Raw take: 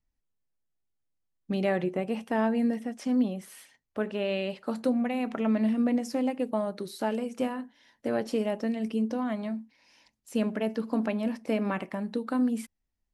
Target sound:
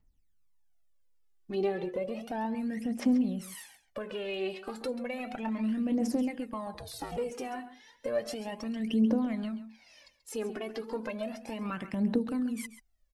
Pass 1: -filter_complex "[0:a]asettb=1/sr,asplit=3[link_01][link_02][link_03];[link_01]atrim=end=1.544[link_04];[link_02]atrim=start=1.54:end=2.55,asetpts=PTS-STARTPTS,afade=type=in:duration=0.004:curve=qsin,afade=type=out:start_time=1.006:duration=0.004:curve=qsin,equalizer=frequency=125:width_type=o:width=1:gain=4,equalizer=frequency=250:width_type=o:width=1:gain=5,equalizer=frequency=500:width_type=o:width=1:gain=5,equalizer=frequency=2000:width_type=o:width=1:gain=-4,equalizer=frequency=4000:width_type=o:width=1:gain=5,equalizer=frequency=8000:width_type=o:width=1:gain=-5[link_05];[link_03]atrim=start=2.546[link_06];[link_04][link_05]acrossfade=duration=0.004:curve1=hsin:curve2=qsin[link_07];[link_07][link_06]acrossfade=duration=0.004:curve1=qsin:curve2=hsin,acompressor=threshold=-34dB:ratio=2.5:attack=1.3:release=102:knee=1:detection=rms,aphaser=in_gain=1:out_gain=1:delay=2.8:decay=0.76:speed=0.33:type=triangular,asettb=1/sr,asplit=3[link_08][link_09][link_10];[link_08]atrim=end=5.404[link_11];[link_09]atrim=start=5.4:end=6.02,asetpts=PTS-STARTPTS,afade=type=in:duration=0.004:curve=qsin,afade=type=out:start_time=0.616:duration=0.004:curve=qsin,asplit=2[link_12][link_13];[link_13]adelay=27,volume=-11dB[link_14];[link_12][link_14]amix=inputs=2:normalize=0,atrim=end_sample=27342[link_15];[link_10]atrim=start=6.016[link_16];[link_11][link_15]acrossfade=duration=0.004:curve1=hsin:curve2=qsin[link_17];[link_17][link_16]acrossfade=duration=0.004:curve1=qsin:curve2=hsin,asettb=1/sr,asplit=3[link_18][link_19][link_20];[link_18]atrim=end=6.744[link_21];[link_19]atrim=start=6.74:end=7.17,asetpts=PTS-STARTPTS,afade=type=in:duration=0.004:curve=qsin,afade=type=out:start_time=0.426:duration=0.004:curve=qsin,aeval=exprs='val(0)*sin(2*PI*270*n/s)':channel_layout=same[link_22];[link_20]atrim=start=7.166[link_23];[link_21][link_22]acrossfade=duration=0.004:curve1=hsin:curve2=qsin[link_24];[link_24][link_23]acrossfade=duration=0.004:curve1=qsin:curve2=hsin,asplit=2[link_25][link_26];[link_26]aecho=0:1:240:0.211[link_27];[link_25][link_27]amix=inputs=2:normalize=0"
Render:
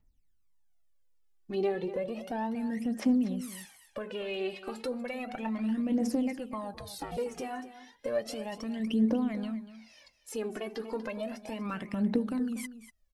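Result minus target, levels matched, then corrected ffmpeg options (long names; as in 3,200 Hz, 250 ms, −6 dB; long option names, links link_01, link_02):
echo 105 ms late
-filter_complex "[0:a]asettb=1/sr,asplit=3[link_01][link_02][link_03];[link_01]atrim=end=1.544[link_04];[link_02]atrim=start=1.54:end=2.55,asetpts=PTS-STARTPTS,afade=type=in:duration=0.004:curve=qsin,afade=type=out:start_time=1.006:duration=0.004:curve=qsin,equalizer=frequency=125:width_type=o:width=1:gain=4,equalizer=frequency=250:width_type=o:width=1:gain=5,equalizer=frequency=500:width_type=o:width=1:gain=5,equalizer=frequency=2000:width_type=o:width=1:gain=-4,equalizer=frequency=4000:width_type=o:width=1:gain=5,equalizer=frequency=8000:width_type=o:width=1:gain=-5[link_05];[link_03]atrim=start=2.546[link_06];[link_04][link_05]acrossfade=duration=0.004:curve1=hsin:curve2=qsin[link_07];[link_07][link_06]acrossfade=duration=0.004:curve1=qsin:curve2=hsin,acompressor=threshold=-34dB:ratio=2.5:attack=1.3:release=102:knee=1:detection=rms,aphaser=in_gain=1:out_gain=1:delay=2.8:decay=0.76:speed=0.33:type=triangular,asettb=1/sr,asplit=3[link_08][link_09][link_10];[link_08]atrim=end=5.404[link_11];[link_09]atrim=start=5.4:end=6.02,asetpts=PTS-STARTPTS,afade=type=in:duration=0.004:curve=qsin,afade=type=out:start_time=0.616:duration=0.004:curve=qsin,asplit=2[link_12][link_13];[link_13]adelay=27,volume=-11dB[link_14];[link_12][link_14]amix=inputs=2:normalize=0,atrim=end_sample=27342[link_15];[link_10]atrim=start=6.016[link_16];[link_11][link_15]acrossfade=duration=0.004:curve1=hsin:curve2=qsin[link_17];[link_17][link_16]acrossfade=duration=0.004:curve1=qsin:curve2=hsin,asettb=1/sr,asplit=3[link_18][link_19][link_20];[link_18]atrim=end=6.744[link_21];[link_19]atrim=start=6.74:end=7.17,asetpts=PTS-STARTPTS,afade=type=in:duration=0.004:curve=qsin,afade=type=out:start_time=0.426:duration=0.004:curve=qsin,aeval=exprs='val(0)*sin(2*PI*270*n/s)':channel_layout=same[link_22];[link_20]atrim=start=7.166[link_23];[link_21][link_22]acrossfade=duration=0.004:curve1=hsin:curve2=qsin[link_24];[link_24][link_23]acrossfade=duration=0.004:curve1=qsin:curve2=hsin,asplit=2[link_25][link_26];[link_26]aecho=0:1:135:0.211[link_27];[link_25][link_27]amix=inputs=2:normalize=0"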